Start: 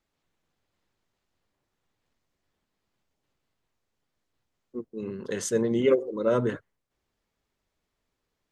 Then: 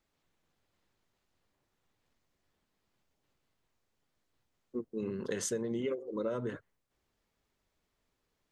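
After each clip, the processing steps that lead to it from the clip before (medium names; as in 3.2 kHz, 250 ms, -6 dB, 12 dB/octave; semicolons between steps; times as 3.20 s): compression 16:1, threshold -31 dBFS, peak gain reduction 16 dB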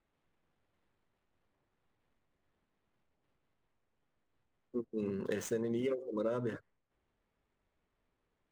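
median filter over 9 samples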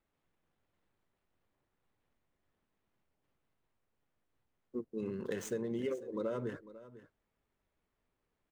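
delay 498 ms -16.5 dB; trim -2 dB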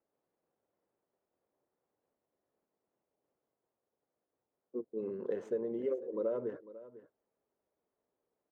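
band-pass filter 510 Hz, Q 1.4; trim +4 dB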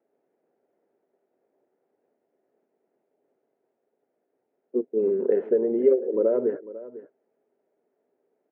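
cabinet simulation 190–2300 Hz, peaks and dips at 250 Hz +5 dB, 400 Hz +8 dB, 670 Hz +4 dB, 1.1 kHz -9 dB; trim +9 dB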